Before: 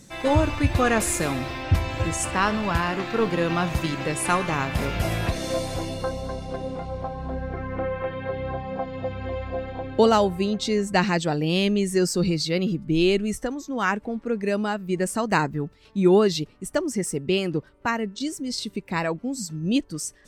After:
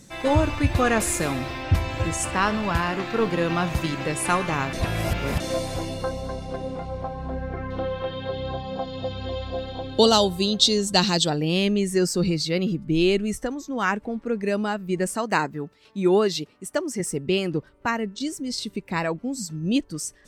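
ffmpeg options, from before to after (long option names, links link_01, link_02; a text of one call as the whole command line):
ffmpeg -i in.wav -filter_complex "[0:a]asettb=1/sr,asplit=3[link_01][link_02][link_03];[link_01]atrim=end=7.704[link_04];[link_02]atrim=start=7.7:end=11.3,asetpts=PTS-STARTPTS,afade=type=in:duration=0.004:curve=qsin,afade=type=out:start_time=3.596:duration=0.004:curve=qsin,highshelf=frequency=2800:width_type=q:width=3:gain=8[link_05];[link_03]atrim=start=11.296[link_06];[link_04][link_05]acrossfade=duration=0.004:curve1=hsin:curve2=qsin[link_07];[link_07][link_06]acrossfade=duration=0.004:curve1=qsin:curve2=hsin,asettb=1/sr,asplit=3[link_08][link_09][link_10];[link_08]atrim=end=15.144[link_11];[link_09]atrim=start=15.14:end=17,asetpts=PTS-STARTPTS,afade=type=in:duration=0.004:curve=qsin,afade=type=out:start_time=1.856:duration=0.004:curve=qsin,highpass=frequency=270:poles=1[link_12];[link_10]atrim=start=16.996[link_13];[link_11][link_12]acrossfade=duration=0.004:curve1=hsin:curve2=qsin[link_14];[link_14][link_13]acrossfade=duration=0.004:curve1=qsin:curve2=hsin,asplit=3[link_15][link_16][link_17];[link_15]atrim=end=4.732[link_18];[link_16]atrim=start=4.728:end=5.402,asetpts=PTS-STARTPTS,areverse[link_19];[link_17]atrim=start=5.398[link_20];[link_18][link_19]acrossfade=duration=0.004:curve1=hsin:curve2=hsin[link_21];[link_21][link_20]acrossfade=duration=0.004:curve1=hsin:curve2=hsin" out.wav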